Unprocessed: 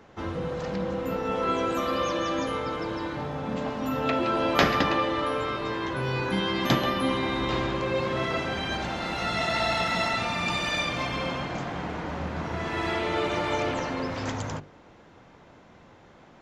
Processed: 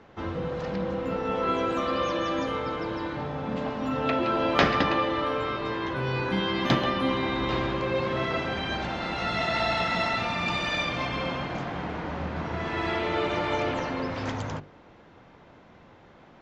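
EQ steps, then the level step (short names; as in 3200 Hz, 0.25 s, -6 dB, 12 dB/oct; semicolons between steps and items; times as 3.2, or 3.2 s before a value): LPF 4900 Hz 12 dB/oct; 0.0 dB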